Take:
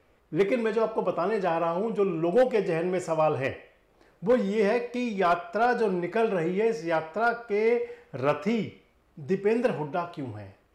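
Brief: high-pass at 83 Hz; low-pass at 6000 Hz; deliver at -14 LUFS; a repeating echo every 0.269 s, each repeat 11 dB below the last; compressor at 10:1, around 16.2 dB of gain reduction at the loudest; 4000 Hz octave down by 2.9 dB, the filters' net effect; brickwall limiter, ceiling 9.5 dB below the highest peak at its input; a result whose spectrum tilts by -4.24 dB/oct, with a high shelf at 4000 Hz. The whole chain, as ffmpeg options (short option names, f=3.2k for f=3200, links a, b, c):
-af "highpass=83,lowpass=6k,highshelf=f=4k:g=5,equalizer=f=4k:t=o:g=-6.5,acompressor=threshold=-35dB:ratio=10,alimiter=level_in=9.5dB:limit=-24dB:level=0:latency=1,volume=-9.5dB,aecho=1:1:269|538|807:0.282|0.0789|0.0221,volume=28.5dB"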